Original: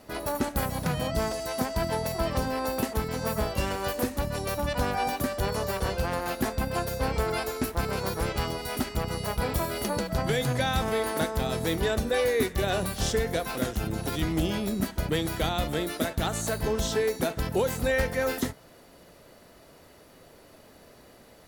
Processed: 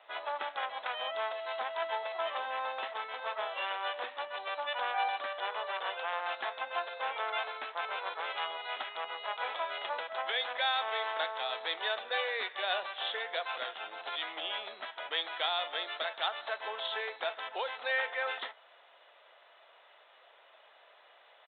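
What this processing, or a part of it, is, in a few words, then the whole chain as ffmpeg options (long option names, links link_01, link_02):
musical greeting card: -af "aresample=8000,aresample=44100,highpass=frequency=690:width=0.5412,highpass=frequency=690:width=1.3066,equalizer=frequency=3500:width_type=o:width=0.43:gain=5,volume=-1.5dB"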